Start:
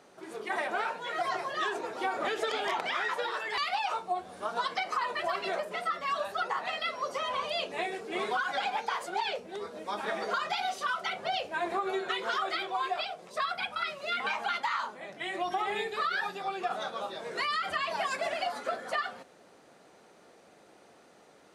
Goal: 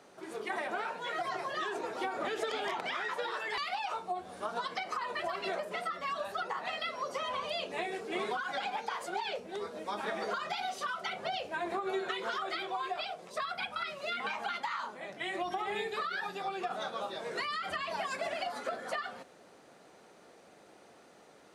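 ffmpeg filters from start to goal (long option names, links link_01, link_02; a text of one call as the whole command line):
ffmpeg -i in.wav -filter_complex "[0:a]acrossover=split=360[link_01][link_02];[link_02]acompressor=threshold=-33dB:ratio=6[link_03];[link_01][link_03]amix=inputs=2:normalize=0" out.wav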